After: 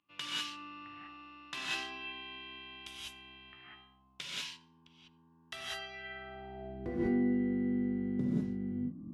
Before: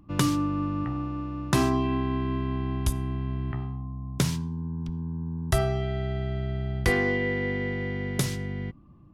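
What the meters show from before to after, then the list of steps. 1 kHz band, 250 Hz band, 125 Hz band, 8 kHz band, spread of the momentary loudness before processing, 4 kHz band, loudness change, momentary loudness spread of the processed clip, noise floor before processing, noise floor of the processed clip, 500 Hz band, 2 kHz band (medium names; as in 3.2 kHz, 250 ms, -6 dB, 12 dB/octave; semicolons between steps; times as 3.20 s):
-13.5 dB, -6.5 dB, -17.5 dB, -13.5 dB, 9 LU, -2.0 dB, -8.5 dB, 19 LU, -51 dBFS, -65 dBFS, -12.5 dB, -10.5 dB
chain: reverse; upward compressor, threshold -34 dBFS; reverse; band-pass sweep 2.9 kHz -> 240 Hz, 5.76–6.96 s; gated-style reverb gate 220 ms rising, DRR -7 dB; trim -5.5 dB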